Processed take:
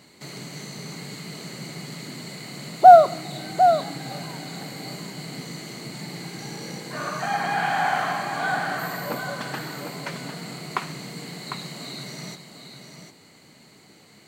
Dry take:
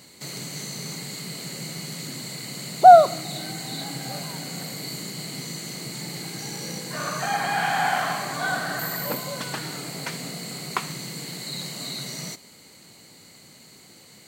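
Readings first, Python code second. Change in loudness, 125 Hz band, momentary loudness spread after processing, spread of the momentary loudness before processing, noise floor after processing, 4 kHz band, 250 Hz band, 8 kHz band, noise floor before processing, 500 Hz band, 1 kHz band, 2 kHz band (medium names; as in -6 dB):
+2.5 dB, -0.5 dB, 17 LU, 11 LU, -52 dBFS, -4.0 dB, +0.5 dB, -7.0 dB, -50 dBFS, +1.0 dB, +1.0 dB, 0.0 dB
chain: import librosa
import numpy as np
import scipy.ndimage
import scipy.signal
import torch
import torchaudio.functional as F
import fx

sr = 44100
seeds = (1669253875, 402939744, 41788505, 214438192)

y = fx.low_shelf(x, sr, hz=110.0, db=-5.5)
y = fx.quant_float(y, sr, bits=4)
y = fx.high_shelf(y, sr, hz=4300.0, db=-11.5)
y = fx.notch(y, sr, hz=520.0, q=15.0)
y = y + 10.0 ** (-8.0 / 20.0) * np.pad(y, (int(751 * sr / 1000.0), 0))[:len(y)]
y = F.gain(torch.from_numpy(y), 1.0).numpy()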